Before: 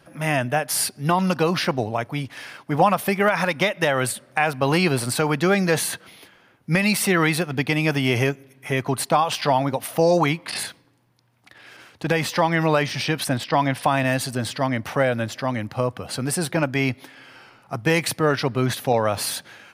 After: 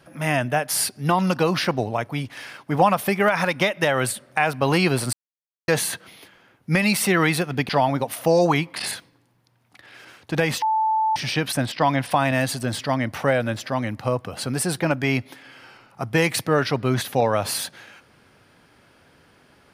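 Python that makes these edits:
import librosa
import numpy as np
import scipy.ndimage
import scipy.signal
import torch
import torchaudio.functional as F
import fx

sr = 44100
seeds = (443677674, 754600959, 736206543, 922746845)

y = fx.edit(x, sr, fx.silence(start_s=5.13, length_s=0.55),
    fx.cut(start_s=7.69, length_s=1.72),
    fx.bleep(start_s=12.34, length_s=0.54, hz=877.0, db=-17.5), tone=tone)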